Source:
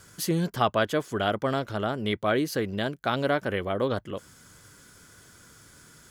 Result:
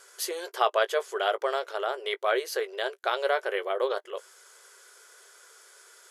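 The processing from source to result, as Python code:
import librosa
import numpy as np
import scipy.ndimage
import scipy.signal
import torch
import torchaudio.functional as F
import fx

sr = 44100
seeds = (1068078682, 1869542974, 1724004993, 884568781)

y = fx.brickwall_bandpass(x, sr, low_hz=360.0, high_hz=13000.0)
y = fx.doubler(y, sr, ms=18.0, db=-13.5)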